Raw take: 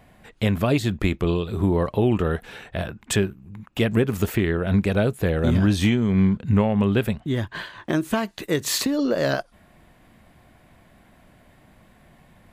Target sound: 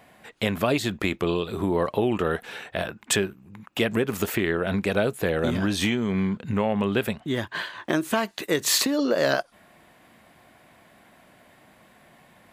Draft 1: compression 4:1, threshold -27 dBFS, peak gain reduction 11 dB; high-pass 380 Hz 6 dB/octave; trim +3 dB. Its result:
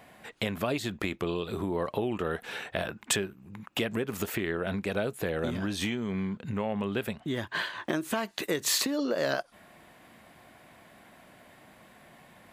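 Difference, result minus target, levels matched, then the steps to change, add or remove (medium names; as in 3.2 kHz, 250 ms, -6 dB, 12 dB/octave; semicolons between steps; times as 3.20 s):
compression: peak gain reduction +7.5 dB
change: compression 4:1, threshold -17 dBFS, peak gain reduction 3.5 dB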